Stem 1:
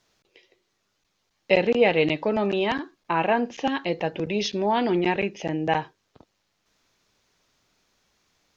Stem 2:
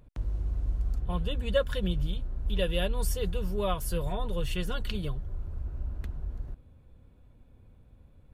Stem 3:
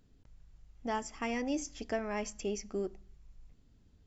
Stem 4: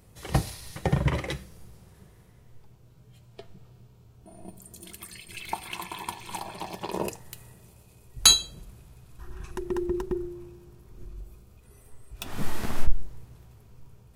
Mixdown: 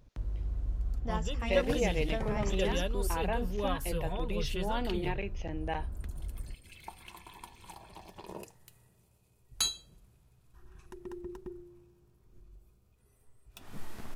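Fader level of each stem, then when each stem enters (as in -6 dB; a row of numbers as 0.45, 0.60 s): -12.5, -4.0, -3.0, -14.0 dB; 0.00, 0.00, 0.20, 1.35 s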